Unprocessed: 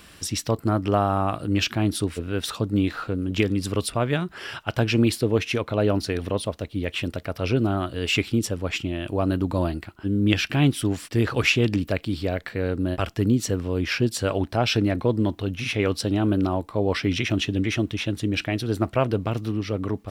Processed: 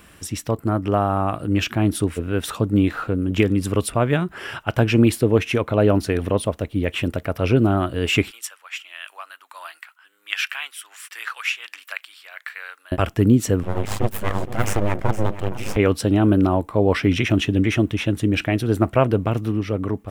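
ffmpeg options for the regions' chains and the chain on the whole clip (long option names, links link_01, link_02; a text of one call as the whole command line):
ffmpeg -i in.wav -filter_complex "[0:a]asettb=1/sr,asplit=3[link_01][link_02][link_03];[link_01]atrim=end=8.314[link_04];[link_02]atrim=start=8.31:end=12.92,asetpts=PTS-STARTPTS,afade=type=in:duration=0.004:curve=qsin,afade=type=out:start_time=4.606:duration=0.004:curve=qsin,highpass=frequency=1200:width=0.5412,highpass=frequency=1200:width=1.3066,tremolo=f=1.4:d=0.52[link_05];[link_03]atrim=start=12.916[link_06];[link_04][link_05]acrossfade=duration=0.004:curve1=hsin:curve2=qsin[link_07];[link_07][link_06]acrossfade=duration=0.004:curve1=qsin:curve2=hsin,asettb=1/sr,asplit=3[link_08][link_09][link_10];[link_08]atrim=end=13.634[link_11];[link_09]atrim=start=13.63:end=15.77,asetpts=PTS-STARTPTS,afade=type=in:duration=0.004:curve=qsin,afade=type=out:start_time=2.136:duration=0.004:curve=qsin,aeval=exprs='val(0)*sin(2*PI*51*n/s)':channel_layout=same,aeval=exprs='abs(val(0))':channel_layout=same,aecho=1:1:466:0.2,atrim=end_sample=94374[link_12];[link_10]atrim=start=15.766[link_13];[link_11][link_12]acrossfade=duration=0.004:curve1=hsin:curve2=qsin[link_14];[link_14][link_13]acrossfade=duration=0.004:curve1=qsin:curve2=hsin,equalizer=frequency=4500:width_type=o:width=0.94:gain=-9.5,dynaudnorm=framelen=670:gausssize=5:maxgain=5dB,volume=1dB" out.wav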